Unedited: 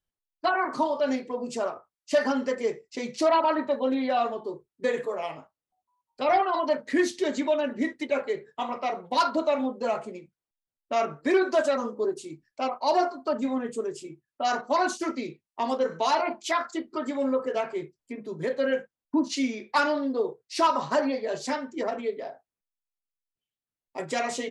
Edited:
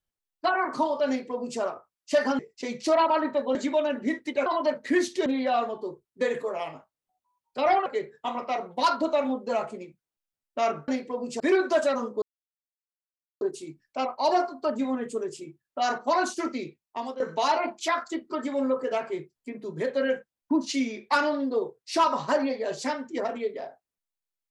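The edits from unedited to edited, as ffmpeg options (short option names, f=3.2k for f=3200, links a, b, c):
-filter_complex "[0:a]asplit=10[a][b][c][d][e][f][g][h][i][j];[a]atrim=end=2.392[k];[b]atrim=start=2.728:end=3.892[l];[c]atrim=start=7.288:end=8.202[m];[d]atrim=start=6.488:end=7.292[n];[e]atrim=start=3.888:end=6.492[o];[f]atrim=start=8.198:end=11.222[p];[g]atrim=start=1.078:end=1.602[q];[h]atrim=start=11.218:end=12.04,asetpts=PTS-STARTPTS,afade=t=out:st=0.818:d=0.004:c=hsin,apad=pad_dur=1.19[r];[i]atrim=start=12.04:end=15.83,asetpts=PTS-STARTPTS,afade=t=in:d=0.004:c=hsin,afade=t=out:st=3.16:d=0.63:c=qsin:silence=0.211349[s];[j]atrim=start=15.83,asetpts=PTS-STARTPTS,afade=t=in:d=0.004:c=hsin:silence=0.211349[t];[k][l]acrossfade=d=0.004:c1=hsin:c2=hsin[u];[u][m]acrossfade=d=0.004:c1=hsin:c2=hsin[v];[v][n]acrossfade=d=0.004:c1=hsin:c2=hsin[w];[w][o]acrossfade=d=0.004:c1=hsin:c2=hsin[x];[x][p]acrossfade=d=0.004:c1=hsin:c2=hsin[y];[y][q]acrossfade=d=0.004:c1=hsin:c2=hsin[z];[r][s][t]concat=n=3:v=0:a=1[aa];[z][aa]acrossfade=d=0.004:c1=hsin:c2=hsin"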